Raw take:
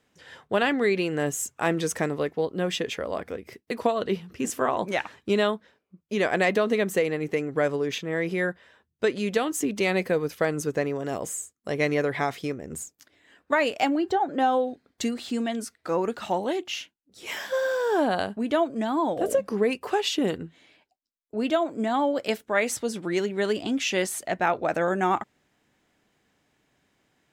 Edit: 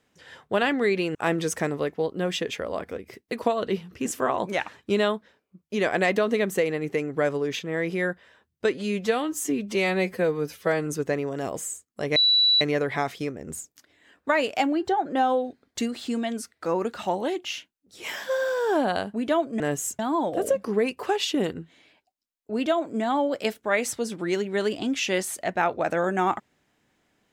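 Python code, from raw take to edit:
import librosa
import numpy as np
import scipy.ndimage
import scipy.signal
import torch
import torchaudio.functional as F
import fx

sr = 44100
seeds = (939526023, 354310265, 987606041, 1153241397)

y = fx.edit(x, sr, fx.move(start_s=1.15, length_s=0.39, to_s=18.83),
    fx.stretch_span(start_s=9.13, length_s=1.42, factor=1.5),
    fx.insert_tone(at_s=11.84, length_s=0.45, hz=3940.0, db=-16.0), tone=tone)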